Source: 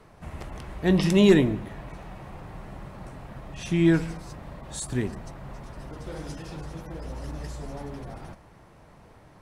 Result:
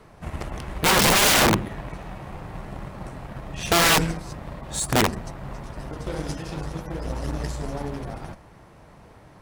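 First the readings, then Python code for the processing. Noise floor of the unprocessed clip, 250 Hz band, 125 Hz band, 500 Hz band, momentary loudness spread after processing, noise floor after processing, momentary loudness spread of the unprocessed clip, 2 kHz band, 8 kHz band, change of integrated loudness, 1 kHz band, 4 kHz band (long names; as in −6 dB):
−53 dBFS, −4.0 dB, 0.0 dB, 0.0 dB, 21 LU, −50 dBFS, 21 LU, +11.5 dB, +16.0 dB, +3.0 dB, +15.0 dB, +13.5 dB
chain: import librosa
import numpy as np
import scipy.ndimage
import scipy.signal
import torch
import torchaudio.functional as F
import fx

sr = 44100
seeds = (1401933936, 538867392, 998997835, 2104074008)

y = (np.mod(10.0 ** (21.0 / 20.0) * x + 1.0, 2.0) - 1.0) / 10.0 ** (21.0 / 20.0)
y = fx.cheby_harmonics(y, sr, harmonics=(3, 7), levels_db=(-27, -26), full_scale_db=-21.0)
y = y * 10.0 ** (9.0 / 20.0)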